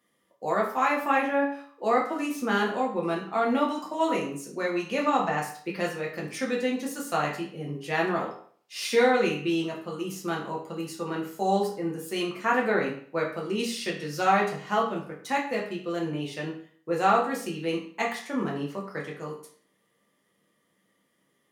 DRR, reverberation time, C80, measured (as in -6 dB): -2.5 dB, 0.50 s, 10.5 dB